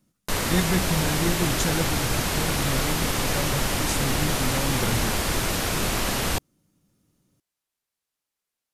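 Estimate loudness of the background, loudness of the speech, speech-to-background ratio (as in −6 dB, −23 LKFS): −25.0 LKFS, −29.5 LKFS, −4.5 dB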